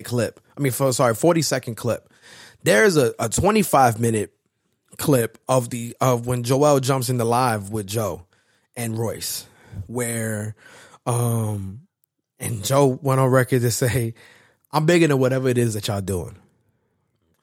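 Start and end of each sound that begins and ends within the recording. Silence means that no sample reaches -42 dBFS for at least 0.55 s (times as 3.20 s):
4.92–16.38 s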